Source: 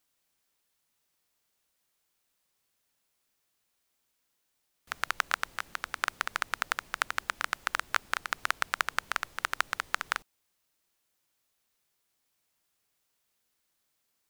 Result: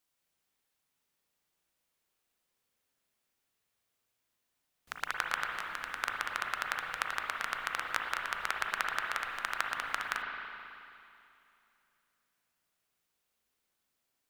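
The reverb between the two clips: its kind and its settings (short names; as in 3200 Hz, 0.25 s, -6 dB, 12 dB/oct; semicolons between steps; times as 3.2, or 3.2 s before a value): spring tank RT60 2.7 s, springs 36/54/58 ms, chirp 70 ms, DRR 0 dB; gain -5 dB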